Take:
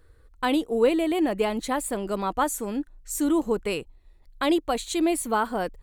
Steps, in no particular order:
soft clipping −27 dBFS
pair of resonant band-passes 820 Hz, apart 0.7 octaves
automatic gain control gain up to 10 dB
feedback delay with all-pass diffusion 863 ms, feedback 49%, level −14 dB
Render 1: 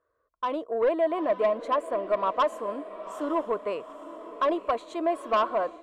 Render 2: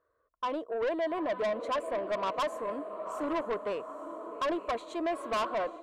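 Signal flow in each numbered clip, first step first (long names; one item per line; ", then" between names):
pair of resonant band-passes, then soft clipping, then feedback delay with all-pass diffusion, then automatic gain control
feedback delay with all-pass diffusion, then automatic gain control, then pair of resonant band-passes, then soft clipping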